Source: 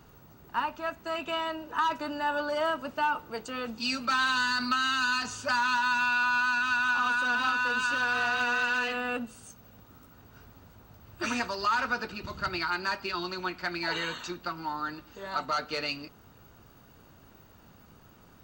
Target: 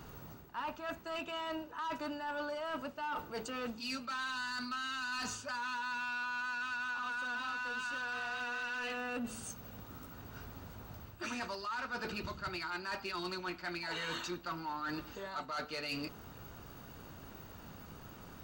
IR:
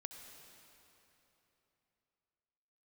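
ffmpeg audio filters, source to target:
-af "bandreject=f=112.2:t=h:w=4,bandreject=f=224.4:t=h:w=4,bandreject=f=336.6:t=h:w=4,bandreject=f=448.8:t=h:w=4,bandreject=f=561:t=h:w=4,bandreject=f=673.2:t=h:w=4,bandreject=f=785.4:t=h:w=4,areverse,acompressor=threshold=-39dB:ratio=12,areverse,asoftclip=type=tanh:threshold=-36dB,volume=4.5dB"

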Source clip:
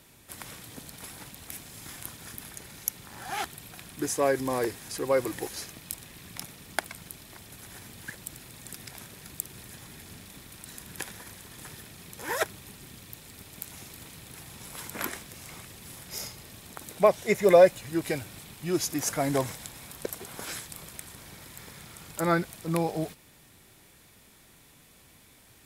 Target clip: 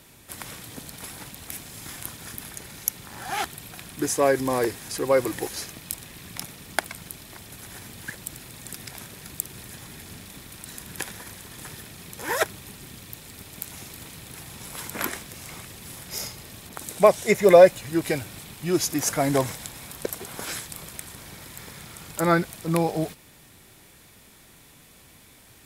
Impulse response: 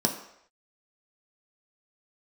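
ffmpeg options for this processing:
-filter_complex "[0:a]asettb=1/sr,asplit=3[a][b][c];[a]atrim=end=16.694[d];[b]atrim=start=16.69:end=17.31,asetpts=PTS-STARTPTS,afade=t=in:d=0.004:c=qsin,afade=t=out:st=0.616:d=0.004:c=qsin,adynamicequalizer=threshold=0.00251:dfrequency=8300:dqfactor=0.91:tfrequency=8300:tqfactor=0.91:attack=5:release=100:ratio=0.375:range=3:mode=boostabove:tftype=bell[e];[c]atrim=start=17.306[f];[d][e]acrossfade=d=0.004:c1=hsin:c2=qsin[g];[g][f]acrossfade=d=0.004:c1=qsin:c2=hsin,volume=4.5dB"

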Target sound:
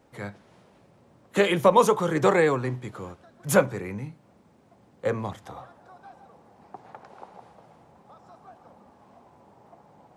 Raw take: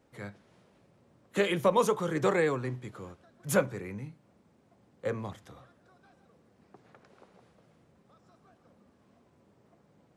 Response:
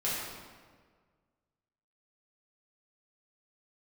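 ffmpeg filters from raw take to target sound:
-af "asetnsamples=n=441:p=0,asendcmd='5.44 equalizer g 14.5',equalizer=f=840:w=1.8:g=4,volume=5.5dB"

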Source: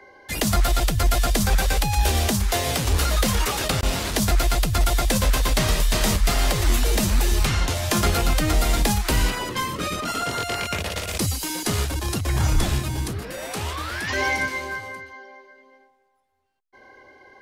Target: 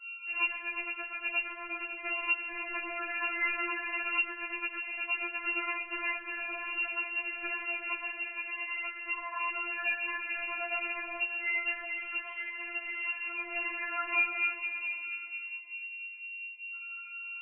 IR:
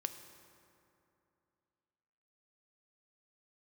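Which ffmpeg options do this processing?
-filter_complex "[0:a]aeval=exprs='val(0)+0.0178*(sin(2*PI*50*n/s)+sin(2*PI*2*50*n/s)/2+sin(2*PI*3*50*n/s)/3+sin(2*PI*4*50*n/s)/4+sin(2*PI*5*50*n/s)/5)':c=same,adynamicequalizer=threshold=0.0112:dfrequency=530:dqfactor=0.77:tfrequency=530:tqfactor=0.77:attack=5:release=100:ratio=0.375:range=2:mode=cutabove:tftype=bell,asettb=1/sr,asplit=3[a][b][c];[a]atrim=end=2.524[d];[b]atrim=start=2.52:end=3.9,asetpts=PTS-STARTPTS,afade=t=in:d=0.004:c=qsin,afade=t=out:st=1.376:d=0.004:c=qsin,highpass=300[e];[c]atrim=start=3.896[f];[d][e]acrossfade=d=0.004:c1=hsin:c2=qsin[g];[g][f]acrossfade=d=0.004:c1=qsin:c2=hsin,asettb=1/sr,asplit=3[h][i][j];[h]atrim=end=8.124[k];[i]atrim=start=8.12:end=9.34,asetpts=PTS-STARTPTS,afade=t=in:d=0.004:c=qsin,afade=t=out:st=1.216:d=0.004:c=qsin,agate=range=-10dB:threshold=-18dB:ratio=16:detection=peak[l];[j]atrim=start=9.336[m];[k][l]acrossfade=d=0.004:c1=hsin:c2=qsin[n];[n][m]acrossfade=d=0.004:c1=qsin:c2=hsin[o];[1:a]atrim=start_sample=2205,asetrate=22050,aresample=44100[p];[o][p]afir=irnorm=-1:irlink=0,acompressor=threshold=-18dB:ratio=6,flanger=delay=7.2:depth=6.3:regen=-32:speed=1.1:shape=triangular,lowpass=f=2.6k:t=q:w=0.5098,lowpass=f=2.6k:t=q:w=0.6013,lowpass=f=2.6k:t=q:w=0.9,lowpass=f=2.6k:t=q:w=2.563,afreqshift=-3000,afftfilt=real='re*4*eq(mod(b,16),0)':imag='im*4*eq(mod(b,16),0)':win_size=2048:overlap=0.75"

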